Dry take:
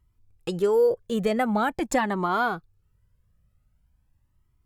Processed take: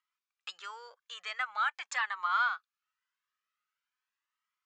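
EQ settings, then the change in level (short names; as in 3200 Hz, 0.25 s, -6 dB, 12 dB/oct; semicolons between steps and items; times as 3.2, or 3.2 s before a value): elliptic band-pass 1200–7000 Hz, stop band 60 dB; air absorption 73 m; 0.0 dB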